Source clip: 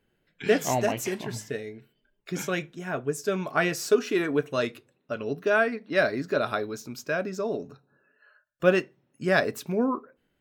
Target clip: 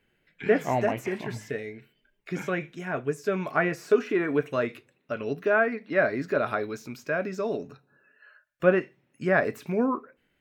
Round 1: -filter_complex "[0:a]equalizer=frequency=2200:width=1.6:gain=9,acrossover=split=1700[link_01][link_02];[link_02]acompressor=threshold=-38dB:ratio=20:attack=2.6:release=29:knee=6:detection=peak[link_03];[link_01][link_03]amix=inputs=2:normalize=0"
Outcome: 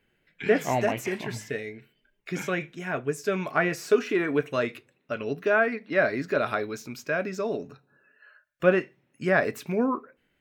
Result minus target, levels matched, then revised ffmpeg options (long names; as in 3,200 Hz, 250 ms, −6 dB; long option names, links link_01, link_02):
downward compressor: peak gain reduction −7.5 dB
-filter_complex "[0:a]equalizer=frequency=2200:width=1.6:gain=9,acrossover=split=1700[link_01][link_02];[link_02]acompressor=threshold=-46dB:ratio=20:attack=2.6:release=29:knee=6:detection=peak[link_03];[link_01][link_03]amix=inputs=2:normalize=0"